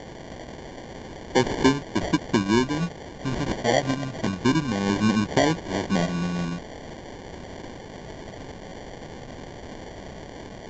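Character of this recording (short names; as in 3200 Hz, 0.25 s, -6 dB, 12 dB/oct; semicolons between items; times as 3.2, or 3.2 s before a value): a quantiser's noise floor 6-bit, dither triangular; phasing stages 12, 0.21 Hz, lowest notch 350–1600 Hz; aliases and images of a low sample rate 1300 Hz, jitter 0%; A-law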